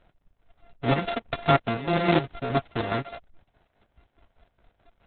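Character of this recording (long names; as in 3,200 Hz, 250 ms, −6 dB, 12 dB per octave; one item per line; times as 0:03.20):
a buzz of ramps at a fixed pitch in blocks of 64 samples
chopped level 4.8 Hz, depth 60%, duty 50%
Opus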